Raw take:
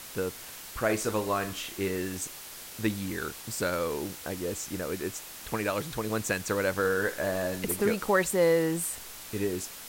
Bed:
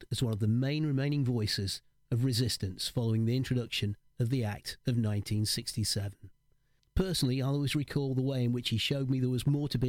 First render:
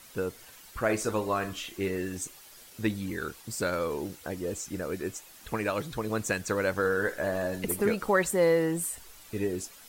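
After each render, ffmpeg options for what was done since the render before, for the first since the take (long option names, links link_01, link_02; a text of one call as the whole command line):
ffmpeg -i in.wav -af "afftdn=noise_reduction=10:noise_floor=-44" out.wav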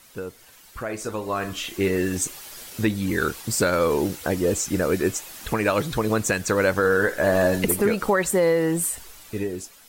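ffmpeg -i in.wav -af "alimiter=limit=-21dB:level=0:latency=1:release=342,dynaudnorm=framelen=460:gausssize=7:maxgain=11.5dB" out.wav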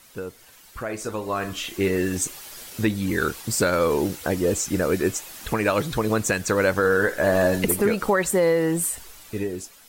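ffmpeg -i in.wav -af anull out.wav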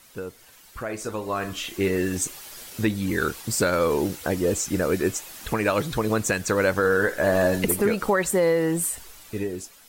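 ffmpeg -i in.wav -af "volume=-1dB" out.wav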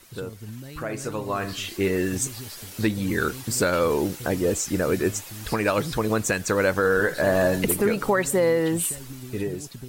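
ffmpeg -i in.wav -i bed.wav -filter_complex "[1:a]volume=-9.5dB[link_01];[0:a][link_01]amix=inputs=2:normalize=0" out.wav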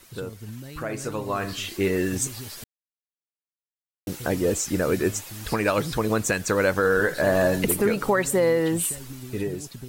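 ffmpeg -i in.wav -filter_complex "[0:a]asplit=3[link_01][link_02][link_03];[link_01]atrim=end=2.64,asetpts=PTS-STARTPTS,afade=type=out:start_time=2.636:duration=0.004:curve=hsin[link_04];[link_02]atrim=start=2.64:end=4.07,asetpts=PTS-STARTPTS,volume=0[link_05];[link_03]atrim=start=4.07,asetpts=PTS-STARTPTS,afade=type=in:duration=0.004:curve=hsin[link_06];[link_04][link_05][link_06]concat=n=3:v=0:a=1" out.wav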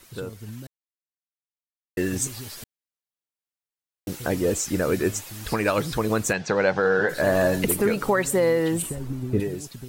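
ffmpeg -i in.wav -filter_complex "[0:a]asplit=3[link_01][link_02][link_03];[link_01]afade=type=out:start_time=6.32:duration=0.02[link_04];[link_02]highpass=140,equalizer=frequency=150:width_type=q:width=4:gain=9,equalizer=frequency=280:width_type=q:width=4:gain=-5,equalizer=frequency=780:width_type=q:width=4:gain=9,equalizer=frequency=1200:width_type=q:width=4:gain=-4,lowpass=frequency=5300:width=0.5412,lowpass=frequency=5300:width=1.3066,afade=type=in:start_time=6.32:duration=0.02,afade=type=out:start_time=7.08:duration=0.02[link_05];[link_03]afade=type=in:start_time=7.08:duration=0.02[link_06];[link_04][link_05][link_06]amix=inputs=3:normalize=0,asettb=1/sr,asplit=3[link_07][link_08][link_09];[link_07]atrim=end=8.824[link_10];[link_08]atrim=start=8.82:end=9.4,asetpts=PTS-STARTPTS,afade=type=in:duration=0.004:curve=qsin,afade=type=out:start_time=0.576:duration=0.004:curve=qsin,tiltshelf=frequency=1400:gain=9[link_11];[link_09]atrim=start=9.396[link_12];[link_10][link_11]acrossfade=duration=0.004:curve1=hsin:curve2=qsin[link_13];[link_13][link_12]acrossfade=duration=0.004:curve1=qsin:curve2=hsin,asplit=3[link_14][link_15][link_16];[link_14]atrim=end=0.67,asetpts=PTS-STARTPTS,afade=type=out:start_time=0.666:duration=0.004:curve=hsin[link_17];[link_15]atrim=start=0.67:end=1.97,asetpts=PTS-STARTPTS,volume=0[link_18];[link_16]atrim=start=1.97,asetpts=PTS-STARTPTS,afade=type=in:duration=0.004:curve=hsin[link_19];[link_17][link_18][link_19]concat=n=3:v=0:a=1" out.wav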